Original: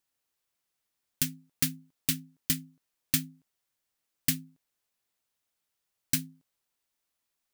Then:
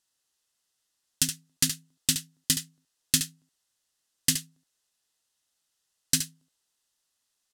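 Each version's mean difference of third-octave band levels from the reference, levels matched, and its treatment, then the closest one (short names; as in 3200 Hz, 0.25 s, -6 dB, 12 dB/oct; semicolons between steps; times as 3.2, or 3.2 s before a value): 6.5 dB: LPF 8800 Hz 12 dB/oct; high shelf 3000 Hz +11 dB; notch 2300 Hz, Q 6.8; echo 71 ms -9 dB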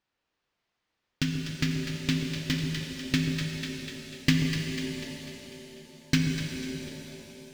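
17.5 dB: air absorption 200 m; split-band echo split 1000 Hz, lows 0.138 s, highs 0.247 s, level -8.5 dB; vocal rider 0.5 s; shimmer reverb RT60 3.3 s, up +7 st, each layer -8 dB, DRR 1.5 dB; gain +6.5 dB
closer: first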